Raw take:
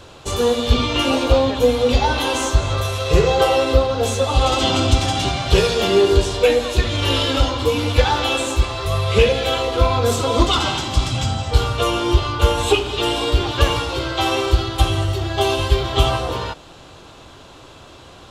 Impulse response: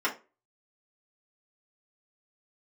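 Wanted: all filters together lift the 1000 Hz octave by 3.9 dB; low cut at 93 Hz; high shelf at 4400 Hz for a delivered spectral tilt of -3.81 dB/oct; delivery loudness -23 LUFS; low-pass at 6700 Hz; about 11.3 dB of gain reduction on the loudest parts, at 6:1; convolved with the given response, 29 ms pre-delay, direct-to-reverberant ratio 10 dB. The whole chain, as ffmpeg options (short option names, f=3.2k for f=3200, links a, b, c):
-filter_complex "[0:a]highpass=93,lowpass=6.7k,equalizer=f=1k:t=o:g=5.5,highshelf=f=4.4k:g=-8.5,acompressor=threshold=-22dB:ratio=6,asplit=2[a][b];[1:a]atrim=start_sample=2205,adelay=29[c];[b][c]afir=irnorm=-1:irlink=0,volume=-20.5dB[d];[a][d]amix=inputs=2:normalize=0,volume=2.5dB"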